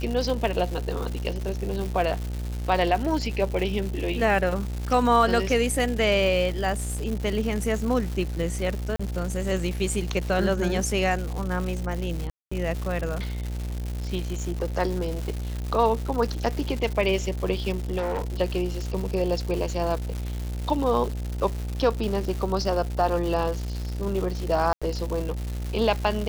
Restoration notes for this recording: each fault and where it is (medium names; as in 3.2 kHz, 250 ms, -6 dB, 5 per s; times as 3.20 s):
buzz 60 Hz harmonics 15 -30 dBFS
crackle 300 per s -30 dBFS
8.96–8.99 s: dropout 35 ms
12.30–12.52 s: dropout 215 ms
17.97–18.34 s: clipped -23.5 dBFS
24.73–24.82 s: dropout 86 ms